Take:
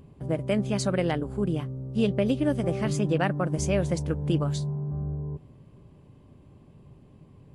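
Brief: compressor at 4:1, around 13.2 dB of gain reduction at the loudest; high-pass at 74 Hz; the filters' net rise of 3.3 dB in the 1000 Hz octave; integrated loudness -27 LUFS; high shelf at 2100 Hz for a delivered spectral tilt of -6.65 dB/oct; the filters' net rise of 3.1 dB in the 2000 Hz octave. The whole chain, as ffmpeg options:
-af "highpass=74,equalizer=f=1k:t=o:g=4.5,equalizer=f=2k:t=o:g=4.5,highshelf=f=2.1k:g=-3.5,acompressor=threshold=-36dB:ratio=4,volume=11.5dB"

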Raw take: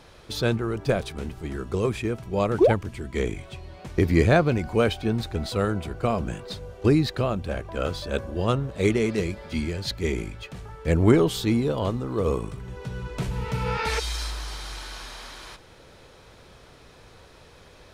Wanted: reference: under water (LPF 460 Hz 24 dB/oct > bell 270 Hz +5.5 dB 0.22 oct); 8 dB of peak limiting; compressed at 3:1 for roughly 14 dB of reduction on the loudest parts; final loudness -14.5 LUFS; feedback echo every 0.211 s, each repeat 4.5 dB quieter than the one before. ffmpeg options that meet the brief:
-af "acompressor=threshold=-33dB:ratio=3,alimiter=level_in=2dB:limit=-24dB:level=0:latency=1,volume=-2dB,lowpass=f=460:w=0.5412,lowpass=f=460:w=1.3066,equalizer=f=270:t=o:w=0.22:g=5.5,aecho=1:1:211|422|633|844|1055|1266|1477|1688|1899:0.596|0.357|0.214|0.129|0.0772|0.0463|0.0278|0.0167|0.01,volume=22dB"

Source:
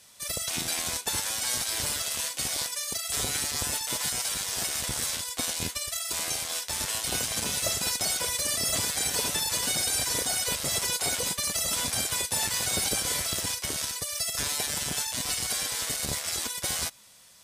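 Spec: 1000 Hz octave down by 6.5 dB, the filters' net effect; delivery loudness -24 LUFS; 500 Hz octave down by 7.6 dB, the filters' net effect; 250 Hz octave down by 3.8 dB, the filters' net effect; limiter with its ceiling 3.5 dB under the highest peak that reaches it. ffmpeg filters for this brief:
-af "equalizer=f=250:t=o:g=-3,equalizer=f=500:t=o:g=-7,equalizer=f=1k:t=o:g=-6,volume=5dB,alimiter=limit=-14dB:level=0:latency=1"

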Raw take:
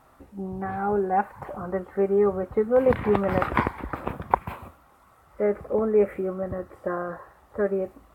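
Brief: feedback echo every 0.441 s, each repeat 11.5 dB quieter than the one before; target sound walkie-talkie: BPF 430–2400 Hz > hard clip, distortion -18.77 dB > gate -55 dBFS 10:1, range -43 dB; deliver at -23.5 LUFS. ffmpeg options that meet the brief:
-af "highpass=430,lowpass=2.4k,aecho=1:1:441|882|1323:0.266|0.0718|0.0194,asoftclip=type=hard:threshold=-12dB,agate=range=-43dB:threshold=-55dB:ratio=10,volume=5dB"

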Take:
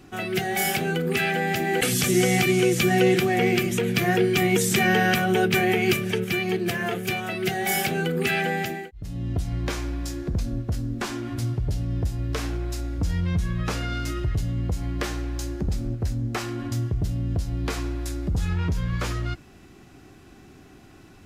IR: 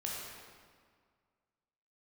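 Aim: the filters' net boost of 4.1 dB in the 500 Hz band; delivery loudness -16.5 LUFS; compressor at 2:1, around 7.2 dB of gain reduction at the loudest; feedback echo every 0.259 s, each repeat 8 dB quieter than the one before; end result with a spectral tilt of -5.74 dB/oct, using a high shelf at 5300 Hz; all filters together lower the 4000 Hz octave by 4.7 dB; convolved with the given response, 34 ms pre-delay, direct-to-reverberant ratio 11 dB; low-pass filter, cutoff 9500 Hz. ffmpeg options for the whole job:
-filter_complex "[0:a]lowpass=9.5k,equalizer=f=500:t=o:g=6,equalizer=f=4k:t=o:g=-8.5,highshelf=f=5.3k:g=3.5,acompressor=threshold=-26dB:ratio=2,aecho=1:1:259|518|777|1036|1295:0.398|0.159|0.0637|0.0255|0.0102,asplit=2[a][b];[1:a]atrim=start_sample=2205,adelay=34[c];[b][c]afir=irnorm=-1:irlink=0,volume=-13dB[d];[a][d]amix=inputs=2:normalize=0,volume=10.5dB"

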